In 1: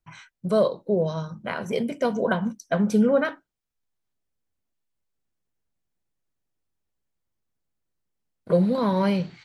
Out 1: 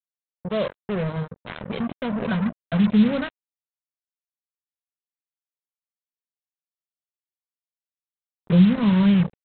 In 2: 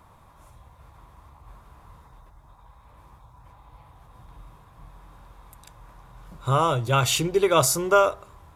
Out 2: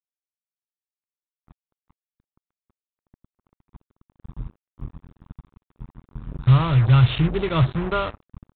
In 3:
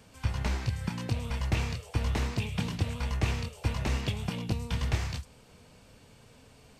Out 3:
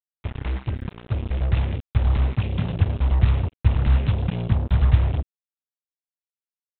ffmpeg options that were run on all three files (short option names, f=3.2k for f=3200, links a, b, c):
-af "asubboost=boost=10.5:cutoff=160,aresample=8000,acrusher=bits=3:mix=0:aa=0.5,aresample=44100,volume=-4dB"